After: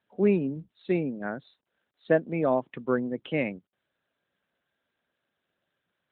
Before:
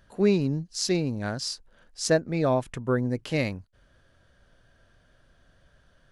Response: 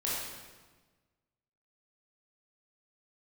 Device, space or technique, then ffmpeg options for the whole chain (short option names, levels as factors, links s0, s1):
mobile call with aggressive noise cancelling: -af "highpass=f=170:w=0.5412,highpass=f=170:w=1.3066,afftdn=nr=17:nf=-42" -ar 8000 -c:a libopencore_amrnb -b:a 12200